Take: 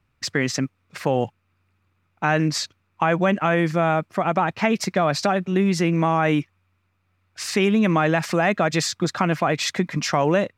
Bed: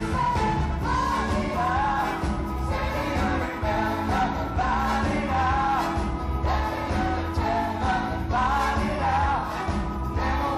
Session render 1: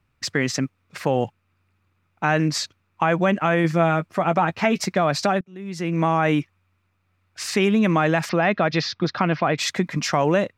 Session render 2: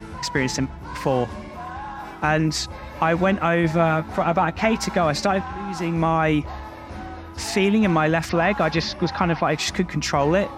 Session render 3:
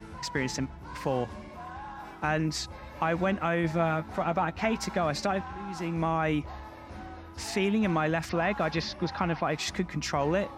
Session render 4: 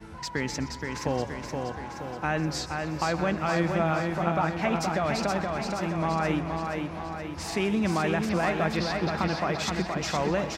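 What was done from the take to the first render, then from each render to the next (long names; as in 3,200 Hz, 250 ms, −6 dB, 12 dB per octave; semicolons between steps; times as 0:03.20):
0:03.63–0:04.86: double-tracking delay 12 ms −9 dB; 0:05.41–0:06.03: fade in quadratic, from −24 dB; 0:08.29–0:09.58: Butterworth low-pass 5,400 Hz 48 dB per octave
mix in bed −9.5 dB
level −8 dB
repeating echo 473 ms, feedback 55%, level −4.5 dB; feedback echo with a swinging delay time 125 ms, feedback 69%, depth 155 cents, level −16 dB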